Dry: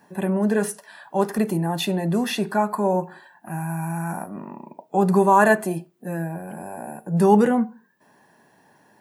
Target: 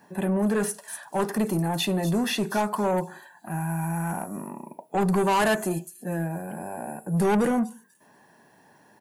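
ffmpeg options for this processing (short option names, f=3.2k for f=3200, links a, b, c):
-filter_complex "[0:a]acrossover=split=4700[a][b];[a]asoftclip=type=tanh:threshold=-18.5dB[c];[b]aecho=1:1:245|490|735:0.562|0.135|0.0324[d];[c][d]amix=inputs=2:normalize=0"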